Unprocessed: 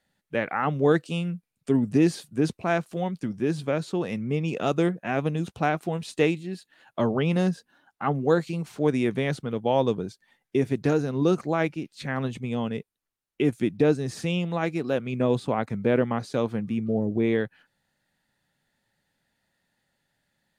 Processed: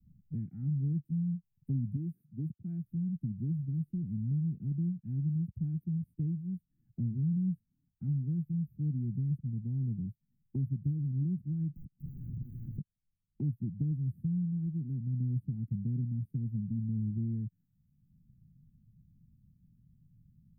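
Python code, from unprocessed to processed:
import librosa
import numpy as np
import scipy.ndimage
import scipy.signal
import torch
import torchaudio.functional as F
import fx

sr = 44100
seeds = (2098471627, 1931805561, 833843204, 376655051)

y = fx.highpass(x, sr, hz=400.0, slope=6, at=(1.95, 2.83), fade=0.02)
y = fx.overflow_wrap(y, sr, gain_db=33.5, at=(11.69, 12.78))
y = scipy.signal.sosfilt(scipy.signal.cheby2(4, 60, [520.0, 6800.0], 'bandstop', fs=sr, output='sos'), y)
y = fx.bass_treble(y, sr, bass_db=-3, treble_db=-13)
y = fx.band_squash(y, sr, depth_pct=70)
y = y * librosa.db_to_amplitude(3.5)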